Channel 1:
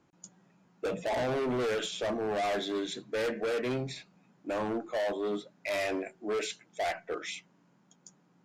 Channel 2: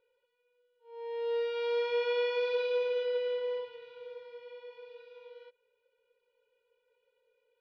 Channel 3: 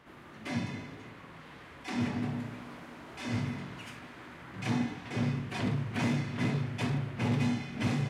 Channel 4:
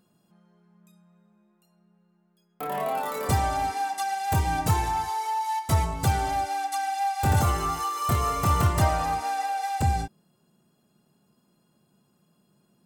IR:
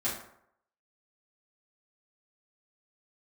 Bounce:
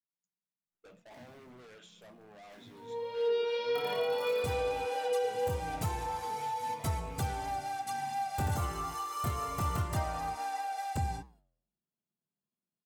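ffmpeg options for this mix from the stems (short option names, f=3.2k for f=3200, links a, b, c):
-filter_complex "[0:a]equalizer=f=420:t=o:w=1.5:g=-5,volume=-15.5dB[a];[1:a]highshelf=f=4.6k:g=11,flanger=delay=17:depth=3.8:speed=0.67,adelay=1900,volume=3dB,asplit=2[b][c];[c]volume=-5.5dB[d];[2:a]acrusher=bits=8:dc=4:mix=0:aa=0.000001,flanger=delay=17.5:depth=5:speed=0.46,adelay=650,volume=-16dB[e];[3:a]adelay=1150,volume=-3.5dB[f];[4:a]atrim=start_sample=2205[g];[d][g]afir=irnorm=-1:irlink=0[h];[a][b][e][f][h]amix=inputs=5:normalize=0,agate=range=-22dB:threshold=-56dB:ratio=16:detection=peak,flanger=delay=7.5:depth=5.3:regen=-89:speed=1.6:shape=triangular,alimiter=limit=-23dB:level=0:latency=1:release=459"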